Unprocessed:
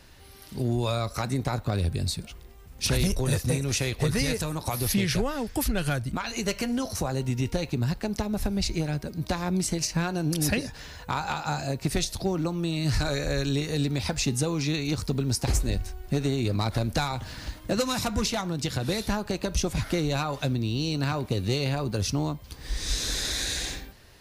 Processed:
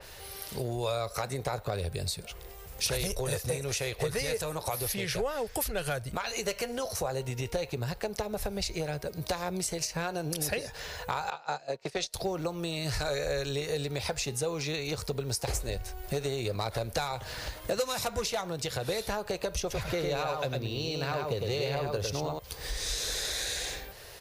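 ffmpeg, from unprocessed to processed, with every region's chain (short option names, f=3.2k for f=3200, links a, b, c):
-filter_complex "[0:a]asettb=1/sr,asplit=3[a][b][c];[a]atrim=end=11.304[d];[b]atrim=start=11.3:end=12.14,asetpts=PTS-STARTPTS,afade=t=in:d=0.004:c=qsin,afade=t=out:st=0.836:d=0.004:c=qsin,agate=range=-18dB:threshold=-29dB:ratio=16:release=100:detection=peak,acrossover=split=170 6600:gain=0.141 1 0.0891[e][f][g];[e][f][g]amix=inputs=3:normalize=0[h];[c]atrim=start=12.136[i];[d][h]acrossfade=d=0.004:c1=hsin:c2=qsin[j];[j][i]acrossfade=d=0.004:c1=qsin:c2=hsin,asettb=1/sr,asplit=3[k][l][m];[k]atrim=end=19.604[n];[l]atrim=start=19.6:end=22.39,asetpts=PTS-STARTPTS,afade=t=in:d=0.004:c=qsin,afade=t=out:st=2.786:d=0.004:c=qsin,equalizer=f=9.1k:t=o:w=0.75:g=-7,aecho=1:1:103:0.631,atrim=end_sample=123039[o];[m]atrim=start=22.386[p];[n][o]acrossfade=d=0.004:c1=hsin:c2=qsin[q];[q][p]acrossfade=d=0.004:c1=qsin:c2=hsin,firequalizer=gain_entry='entry(140,0);entry(260,-7);entry(450,11);entry(980,6);entry(14000,13)':delay=0.05:min_phase=1,acompressor=threshold=-36dB:ratio=2,adynamicequalizer=threshold=0.00447:dfrequency=3500:dqfactor=0.7:tfrequency=3500:tqfactor=0.7:attack=5:release=100:ratio=0.375:range=2:mode=cutabove:tftype=highshelf"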